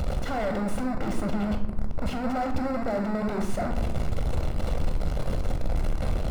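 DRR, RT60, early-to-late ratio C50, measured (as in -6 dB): 5.5 dB, 0.95 s, 9.5 dB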